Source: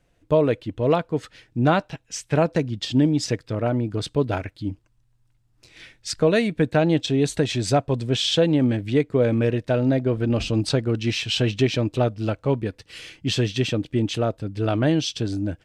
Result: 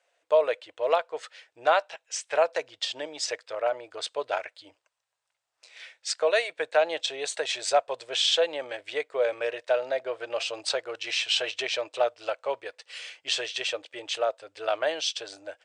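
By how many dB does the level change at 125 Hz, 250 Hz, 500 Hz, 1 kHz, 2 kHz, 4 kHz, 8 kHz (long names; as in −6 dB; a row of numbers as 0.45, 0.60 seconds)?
below −40 dB, −26.5 dB, −4.0 dB, −0.5 dB, 0.0 dB, −0.5 dB, −0.5 dB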